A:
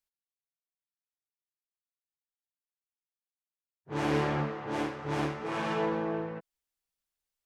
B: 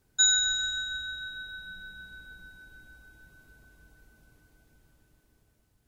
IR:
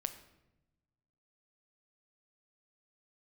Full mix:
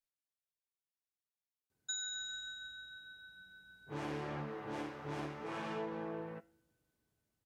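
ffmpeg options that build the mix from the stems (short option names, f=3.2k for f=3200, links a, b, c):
-filter_complex "[0:a]flanger=delay=6.1:depth=4.7:regen=84:speed=0.29:shape=triangular,volume=-3.5dB,asplit=2[a][b];[b]volume=-15dB[c];[1:a]highpass=90,adelay=1700,volume=-13.5dB[d];[2:a]atrim=start_sample=2205[e];[c][e]afir=irnorm=-1:irlink=0[f];[a][d][f]amix=inputs=3:normalize=0,acompressor=threshold=-38dB:ratio=4"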